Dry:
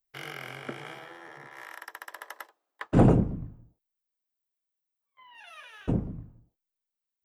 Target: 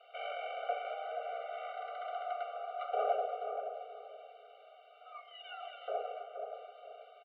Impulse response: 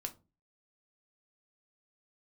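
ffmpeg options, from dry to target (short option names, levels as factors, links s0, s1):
-filter_complex "[0:a]aeval=exprs='val(0)+0.5*0.0447*sgn(val(0))':c=same,asplit=2[s0][s1];[s1]acrusher=bits=4:mix=0:aa=0.000001,volume=0.708[s2];[s0][s2]amix=inputs=2:normalize=0,aeval=exprs='(tanh(10*val(0)+0.75)-tanh(0.75))/10':c=same,afreqshift=-30,asplit=2[s3][s4];[s4]adelay=478,lowpass=f=1200:p=1,volume=0.501,asplit=2[s5][s6];[s6]adelay=478,lowpass=f=1200:p=1,volume=0.32,asplit=2[s7][s8];[s8]adelay=478,lowpass=f=1200:p=1,volume=0.32,asplit=2[s9][s10];[s10]adelay=478,lowpass=f=1200:p=1,volume=0.32[s11];[s3][s5][s7][s9][s11]amix=inputs=5:normalize=0[s12];[1:a]atrim=start_sample=2205[s13];[s12][s13]afir=irnorm=-1:irlink=0,highpass=f=250:t=q:w=0.5412,highpass=f=250:t=q:w=1.307,lowpass=f=3400:t=q:w=0.5176,lowpass=f=3400:t=q:w=0.7071,lowpass=f=3400:t=q:w=1.932,afreqshift=160,asplit=3[s14][s15][s16];[s14]bandpass=f=730:t=q:w=8,volume=1[s17];[s15]bandpass=f=1090:t=q:w=8,volume=0.501[s18];[s16]bandpass=f=2440:t=q:w=8,volume=0.355[s19];[s17][s18][s19]amix=inputs=3:normalize=0,afftfilt=real='re*eq(mod(floor(b*sr/1024/390),2),1)':imag='im*eq(mod(floor(b*sr/1024/390),2),1)':win_size=1024:overlap=0.75,volume=2.24"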